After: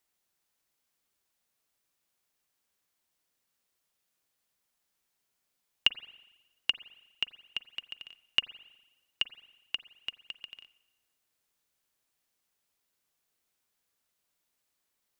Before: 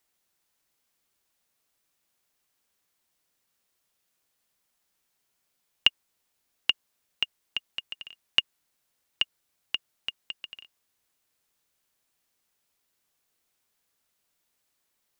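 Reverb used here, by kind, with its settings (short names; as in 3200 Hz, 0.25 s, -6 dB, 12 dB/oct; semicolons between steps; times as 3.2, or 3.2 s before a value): spring tank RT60 1.1 s, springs 41/45 ms, chirp 50 ms, DRR 16 dB; gain -4 dB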